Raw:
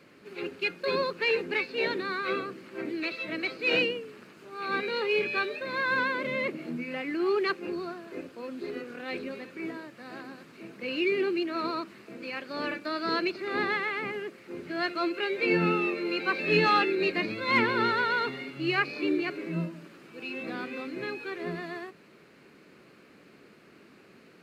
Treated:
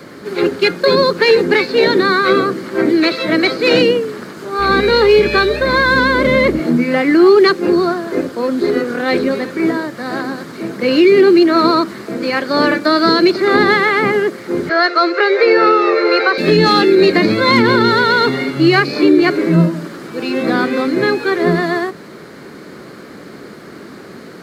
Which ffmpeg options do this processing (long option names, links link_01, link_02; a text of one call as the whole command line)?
ffmpeg -i in.wav -filter_complex "[0:a]asettb=1/sr,asplit=3[link_01][link_02][link_03];[link_01]atrim=end=4.594[link_04];[link_02]atrim=start=4.59:end=6.6,asetpts=PTS-STARTPTS,afade=type=in:duration=0.004:curve=qsin,afade=type=out:start_time=2.006:duration=0.004:curve=qsin,aeval=exprs='val(0)+0.00355*(sin(2*PI*60*n/s)+sin(2*PI*2*60*n/s)/2+sin(2*PI*3*60*n/s)/3+sin(2*PI*4*60*n/s)/4+sin(2*PI*5*60*n/s)/5)':channel_layout=same[link_05];[link_03]atrim=start=6.596[link_06];[link_04][link_05]acrossfade=duration=0.004:curve1=hsin:curve2=qsin[link_07];[link_07][link_06]acrossfade=duration=0.004:curve1=qsin:curve2=hsin,asettb=1/sr,asplit=3[link_08][link_09][link_10];[link_08]atrim=end=14.694[link_11];[link_09]atrim=start=14.69:end=16.38,asetpts=PTS-STARTPTS,afade=type=in:duration=0.004:curve=qsin,afade=type=out:start_time=1.686:duration=0.004:curve=qsin,highpass=frequency=430:width=0.5412,highpass=frequency=430:width=1.3066,equalizer=frequency=470:width_type=q:width=4:gain=7,equalizer=frequency=760:width_type=q:width=4:gain=3,equalizer=frequency=1300:width_type=q:width=4:gain=7,equalizer=frequency=1900:width_type=q:width=4:gain=5,equalizer=frequency=3200:width_type=q:width=4:gain=-6,lowpass=frequency=5700:width=0.5412,lowpass=frequency=5700:width=1.3066[link_12];[link_10]atrim=start=16.376[link_13];[link_11][link_12]acrossfade=duration=0.004:curve1=hsin:curve2=qsin[link_14];[link_14][link_13]acrossfade=duration=0.004:curve1=qsin:curve2=hsin,equalizer=frequency=2600:width_type=o:width=0.37:gain=-13.5,acrossover=split=410|3000[link_15][link_16][link_17];[link_16]acompressor=threshold=-33dB:ratio=6[link_18];[link_15][link_18][link_17]amix=inputs=3:normalize=0,alimiter=level_in=22.5dB:limit=-1dB:release=50:level=0:latency=1,volume=-1dB" out.wav